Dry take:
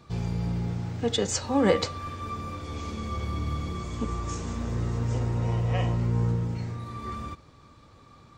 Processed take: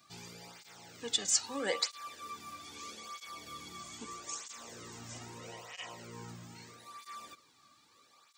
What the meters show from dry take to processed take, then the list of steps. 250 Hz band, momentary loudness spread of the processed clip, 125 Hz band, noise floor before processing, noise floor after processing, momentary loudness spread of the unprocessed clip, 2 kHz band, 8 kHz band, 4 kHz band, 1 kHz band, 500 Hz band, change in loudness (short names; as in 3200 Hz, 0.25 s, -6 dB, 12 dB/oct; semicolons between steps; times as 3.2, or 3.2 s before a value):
-19.0 dB, 19 LU, -28.0 dB, -54 dBFS, -66 dBFS, 11 LU, -5.5 dB, +2.0 dB, -1.5 dB, -10.5 dB, -14.0 dB, -9.5 dB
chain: tilt +4.5 dB/oct; tape flanging out of phase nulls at 0.78 Hz, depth 2.3 ms; gain -7.5 dB